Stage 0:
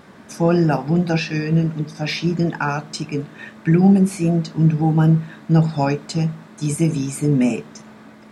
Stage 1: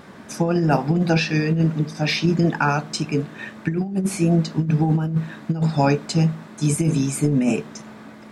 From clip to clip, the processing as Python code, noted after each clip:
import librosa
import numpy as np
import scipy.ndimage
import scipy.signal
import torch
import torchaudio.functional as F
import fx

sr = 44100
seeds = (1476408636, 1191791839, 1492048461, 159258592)

y = fx.over_compress(x, sr, threshold_db=-17.0, ratio=-0.5)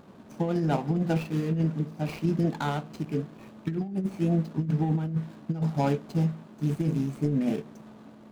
y = scipy.signal.medfilt(x, 25)
y = y * 10.0 ** (-7.0 / 20.0)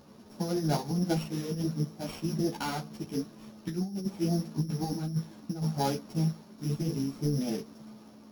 y = np.r_[np.sort(x[:len(x) // 8 * 8].reshape(-1, 8), axis=1).ravel(), x[len(x) // 8 * 8:]]
y = fx.ensemble(y, sr)